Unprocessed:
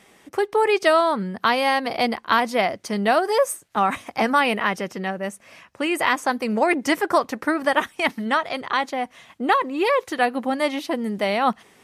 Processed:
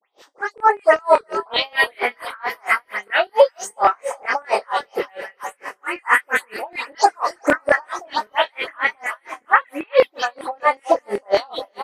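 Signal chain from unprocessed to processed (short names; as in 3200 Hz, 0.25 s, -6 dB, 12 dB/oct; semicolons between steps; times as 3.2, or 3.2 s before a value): spectral delay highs late, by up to 0.181 s; HPF 320 Hz 12 dB/oct; high shelf 4900 Hz -5 dB; in parallel at -0.5 dB: compressor, threshold -32 dBFS, peak gain reduction 16.5 dB; on the sum: phaser stages 4, 0.3 Hz, lowest notch 550–3600 Hz; LFO high-pass saw down 5.2 Hz 430–2200 Hz; doubler 25 ms -3 dB; split-band echo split 500 Hz, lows 0.63 s, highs 0.363 s, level -14.5 dB; maximiser +9 dB; dB-linear tremolo 4.4 Hz, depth 36 dB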